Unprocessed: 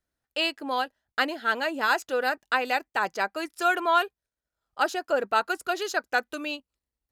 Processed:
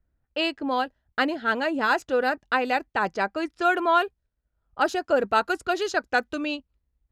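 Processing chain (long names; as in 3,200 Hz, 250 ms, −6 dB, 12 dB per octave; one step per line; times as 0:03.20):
RIAA equalisation playback
low-pass that shuts in the quiet parts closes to 2,300 Hz, open at −22 dBFS
high-shelf EQ 3,500 Hz +6.5 dB, from 0:04.85 +11.5 dB
level +1 dB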